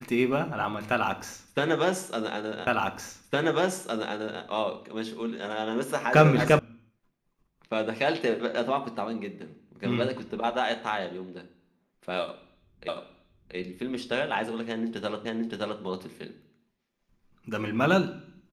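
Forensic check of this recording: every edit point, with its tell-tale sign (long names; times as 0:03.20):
0:02.67: the same again, the last 1.76 s
0:06.59: cut off before it has died away
0:12.88: the same again, the last 0.68 s
0:15.25: the same again, the last 0.57 s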